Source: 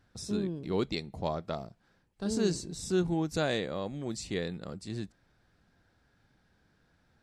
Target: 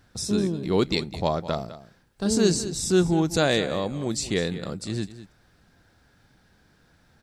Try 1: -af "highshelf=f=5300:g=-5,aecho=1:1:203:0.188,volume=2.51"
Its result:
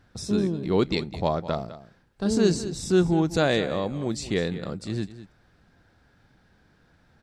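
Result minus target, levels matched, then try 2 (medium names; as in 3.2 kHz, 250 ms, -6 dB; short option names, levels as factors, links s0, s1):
8 kHz band -6.5 dB
-af "highshelf=f=5300:g=6,aecho=1:1:203:0.188,volume=2.51"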